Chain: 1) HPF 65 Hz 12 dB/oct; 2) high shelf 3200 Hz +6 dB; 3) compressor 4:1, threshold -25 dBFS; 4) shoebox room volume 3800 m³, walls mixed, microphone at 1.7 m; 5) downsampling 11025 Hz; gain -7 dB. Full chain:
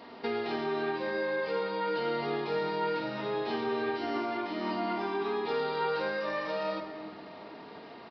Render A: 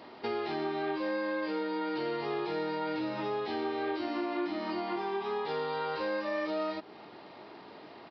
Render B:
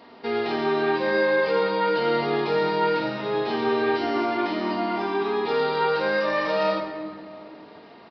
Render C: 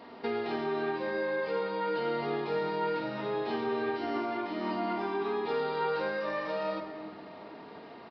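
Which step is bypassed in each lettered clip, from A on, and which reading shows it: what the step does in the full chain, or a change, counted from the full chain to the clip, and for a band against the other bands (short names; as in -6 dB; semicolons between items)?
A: 4, momentary loudness spread change +4 LU; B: 3, mean gain reduction 6.5 dB; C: 2, 4 kHz band -3.0 dB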